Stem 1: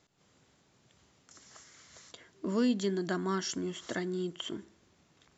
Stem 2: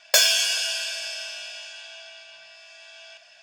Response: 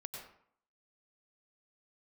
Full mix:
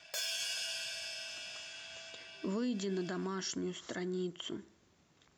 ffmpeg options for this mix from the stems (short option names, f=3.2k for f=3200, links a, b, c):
-filter_complex "[0:a]volume=-2.5dB,asplit=2[a][b];[1:a]acompressor=threshold=-44dB:ratio=1.5,volume=-5dB[c];[b]apad=whole_len=151260[d];[c][d]sidechaincompress=threshold=-38dB:ratio=8:attack=37:release=124[e];[a][e]amix=inputs=2:normalize=0,alimiter=level_in=4dB:limit=-24dB:level=0:latency=1:release=36,volume=-4dB"